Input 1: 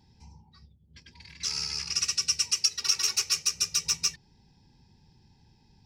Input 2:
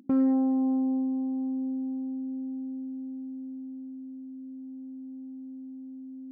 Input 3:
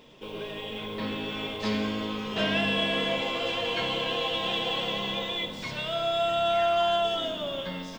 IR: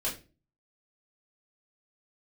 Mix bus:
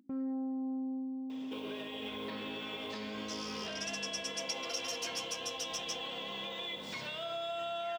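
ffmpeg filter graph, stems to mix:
-filter_complex "[0:a]adelay=1850,volume=0.188[s0];[1:a]volume=0.299[s1];[2:a]acompressor=threshold=0.0398:ratio=6,highpass=f=280:p=1,adelay=1300,volume=1.06[s2];[s1][s2]amix=inputs=2:normalize=0,alimiter=level_in=2.37:limit=0.0631:level=0:latency=1:release=371,volume=0.422,volume=1[s3];[s0][s3]amix=inputs=2:normalize=0"

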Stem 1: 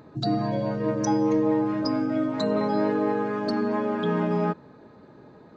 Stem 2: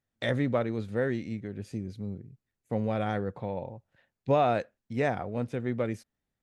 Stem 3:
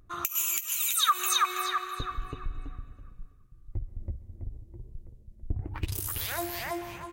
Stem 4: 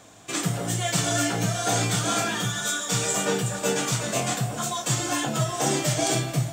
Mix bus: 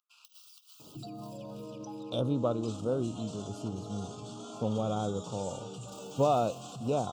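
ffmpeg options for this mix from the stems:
-filter_complex "[0:a]acompressor=threshold=0.0316:ratio=6,adelay=800,volume=0.501[s0];[1:a]adelay=1900,volume=0.794[s1];[2:a]aeval=exprs='abs(val(0))':c=same,highpass=f=1400:w=0.5412,highpass=f=1400:w=1.3066,acompressor=threshold=0.0112:ratio=6,volume=0.282[s2];[3:a]acompressor=threshold=0.0178:ratio=3,lowpass=8200,adelay=2350,volume=0.631[s3];[s0][s2][s3]amix=inputs=3:normalize=0,equalizer=f=14000:t=o:w=0.96:g=-8,alimiter=level_in=3.76:limit=0.0631:level=0:latency=1:release=23,volume=0.266,volume=1[s4];[s1][s4]amix=inputs=2:normalize=0,asuperstop=centerf=1900:order=8:qfactor=1.4"

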